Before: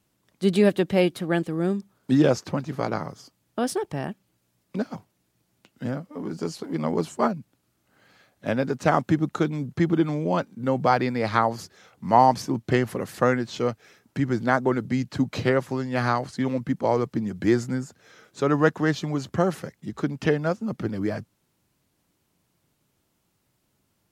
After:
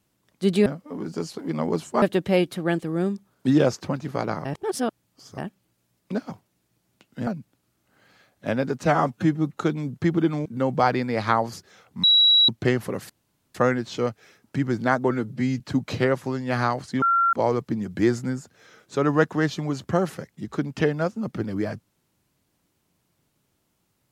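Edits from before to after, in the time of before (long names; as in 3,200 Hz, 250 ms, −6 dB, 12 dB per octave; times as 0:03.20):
0:03.09–0:04.02: reverse
0:05.91–0:07.27: move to 0:00.66
0:08.85–0:09.34: time-stretch 1.5×
0:10.21–0:10.52: remove
0:12.10–0:12.55: beep over 3,890 Hz −13 dBFS
0:13.16: splice in room tone 0.45 s
0:14.72–0:15.05: time-stretch 1.5×
0:16.47–0:16.78: beep over 1,370 Hz −16.5 dBFS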